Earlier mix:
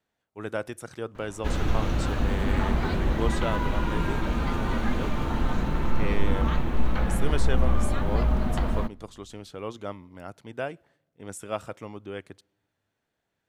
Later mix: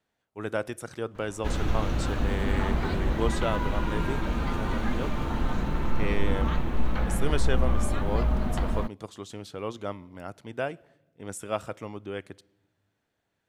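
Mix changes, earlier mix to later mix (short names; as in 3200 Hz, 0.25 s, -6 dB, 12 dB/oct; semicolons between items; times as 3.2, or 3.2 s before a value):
speech: send +9.0 dB; background: send off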